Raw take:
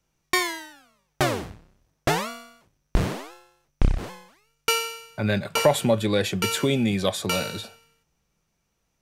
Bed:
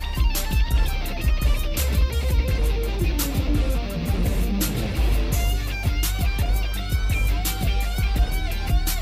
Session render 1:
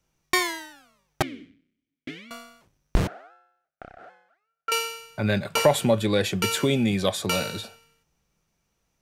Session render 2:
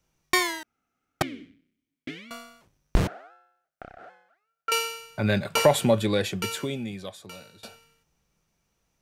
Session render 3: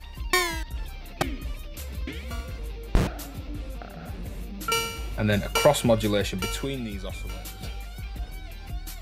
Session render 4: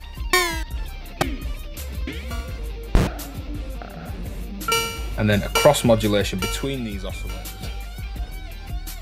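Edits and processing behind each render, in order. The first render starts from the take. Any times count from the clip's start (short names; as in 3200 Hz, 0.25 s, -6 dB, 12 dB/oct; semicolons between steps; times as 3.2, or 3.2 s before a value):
1.22–2.31 vowel filter i; 3.07–4.72 double band-pass 1000 Hz, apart 0.95 oct
0.63–1.21 room tone; 5.96–7.63 fade out quadratic, to -21 dB
add bed -14 dB
gain +4.5 dB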